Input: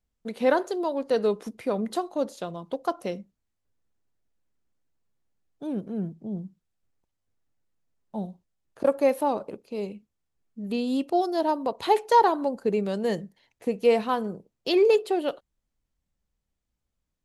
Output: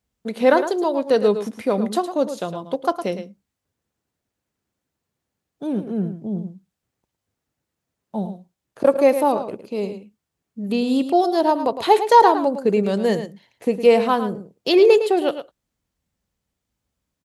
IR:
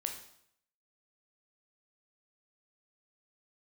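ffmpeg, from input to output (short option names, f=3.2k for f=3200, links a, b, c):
-af "highpass=71,aecho=1:1:109:0.299,volume=6.5dB"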